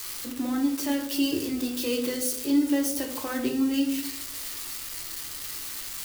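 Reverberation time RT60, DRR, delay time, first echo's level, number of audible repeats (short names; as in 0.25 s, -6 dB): 0.65 s, 1.5 dB, none, none, none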